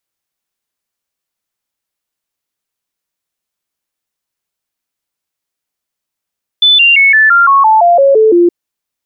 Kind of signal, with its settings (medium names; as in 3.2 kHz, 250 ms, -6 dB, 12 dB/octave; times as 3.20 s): stepped sine 3.5 kHz down, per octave 3, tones 11, 0.17 s, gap 0.00 s -3.5 dBFS